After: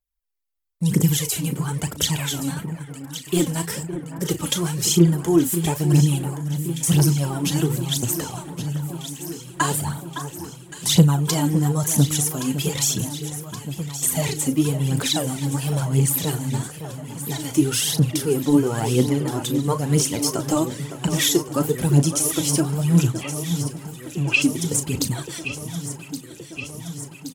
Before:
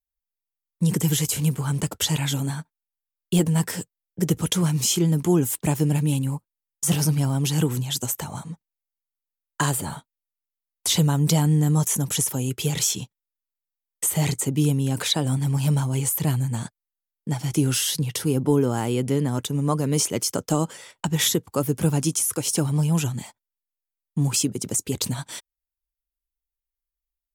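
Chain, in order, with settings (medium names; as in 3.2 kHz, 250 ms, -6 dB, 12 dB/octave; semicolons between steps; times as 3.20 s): doubling 35 ms -11 dB; phaser 1 Hz, delay 3.9 ms, feedback 64%; 23.21–24.42 s: resonant low-pass 2.7 kHz, resonance Q 11; echo whose repeats swap between lows and highs 561 ms, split 1.8 kHz, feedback 83%, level -10 dB; trim -1 dB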